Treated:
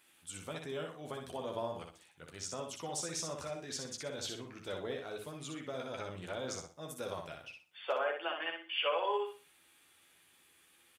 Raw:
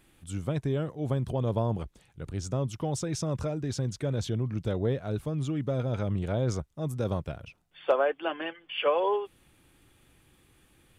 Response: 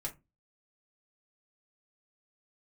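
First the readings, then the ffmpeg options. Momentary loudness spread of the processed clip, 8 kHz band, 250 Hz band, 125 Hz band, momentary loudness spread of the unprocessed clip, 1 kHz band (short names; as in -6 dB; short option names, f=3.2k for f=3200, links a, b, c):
12 LU, +1.0 dB, -14.5 dB, -21.5 dB, 10 LU, -5.0 dB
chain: -filter_complex "[0:a]lowpass=f=1.4k:p=1,aderivative,bandreject=f=108.5:t=h:w=4,bandreject=f=217:t=h:w=4,bandreject=f=325.5:t=h:w=4,bandreject=f=434:t=h:w=4,bandreject=f=542.5:t=h:w=4,bandreject=f=651:t=h:w=4,bandreject=f=759.5:t=h:w=4,bandreject=f=868:t=h:w=4,asplit=2[a][b];[b]alimiter=level_in=19dB:limit=-24dB:level=0:latency=1:release=142,volume=-19dB,volume=-1.5dB[c];[a][c]amix=inputs=2:normalize=0,asplit=2[d][e];[e]adelay=12,volume=-6dB[f];[d][f]amix=inputs=2:normalize=0,aecho=1:1:61|122|183|244:0.562|0.152|0.041|0.0111,volume=8dB"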